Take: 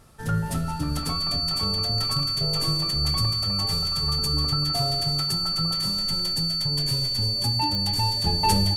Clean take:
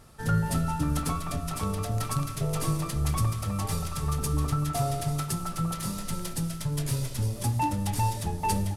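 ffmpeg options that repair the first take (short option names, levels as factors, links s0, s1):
-af "adeclick=t=4,bandreject=f=4500:w=30,asetnsamples=n=441:p=0,asendcmd='8.24 volume volume -5.5dB',volume=1"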